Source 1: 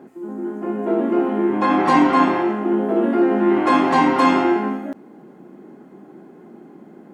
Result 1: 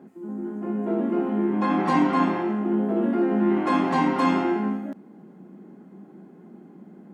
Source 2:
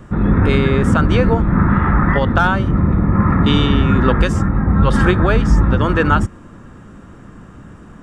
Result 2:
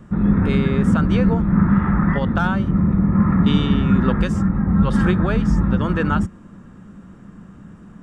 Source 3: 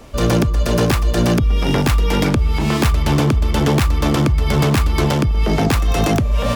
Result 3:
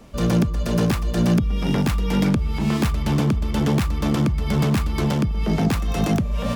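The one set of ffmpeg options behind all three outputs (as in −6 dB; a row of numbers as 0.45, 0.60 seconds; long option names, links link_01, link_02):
-af "equalizer=frequency=190:width_type=o:width=0.55:gain=10.5,volume=-7.5dB"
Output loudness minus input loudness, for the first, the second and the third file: −5.5, −3.0, −4.5 LU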